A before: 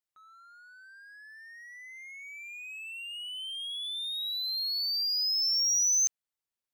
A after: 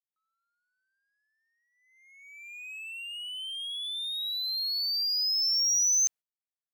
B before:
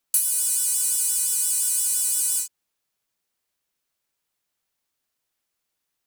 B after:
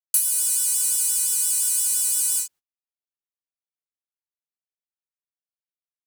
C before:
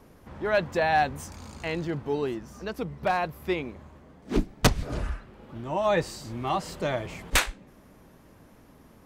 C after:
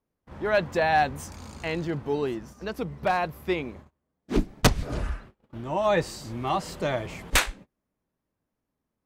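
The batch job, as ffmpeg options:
-af "agate=range=-30dB:threshold=-44dB:ratio=16:detection=peak,volume=1dB"

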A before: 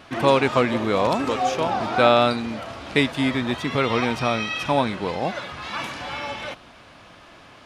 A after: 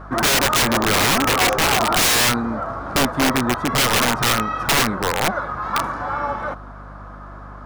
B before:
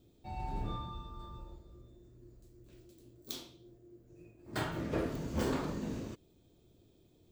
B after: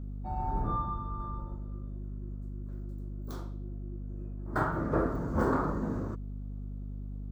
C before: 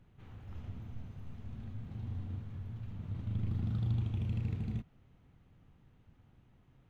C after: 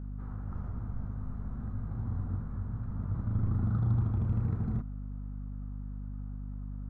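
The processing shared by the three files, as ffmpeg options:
-filter_complex "[0:a]highshelf=f=1.9k:t=q:w=3:g=-13,asplit=2[a][b];[b]asoftclip=type=hard:threshold=-17.5dB,volume=-11.5dB[c];[a][c]amix=inputs=2:normalize=0,aeval=exprs='val(0)+0.01*(sin(2*PI*50*n/s)+sin(2*PI*2*50*n/s)/2+sin(2*PI*3*50*n/s)/3+sin(2*PI*4*50*n/s)/4+sin(2*PI*5*50*n/s)/5)':c=same,aeval=exprs='(mod(5.01*val(0)+1,2)-1)/5.01':c=same,volume=2.5dB"

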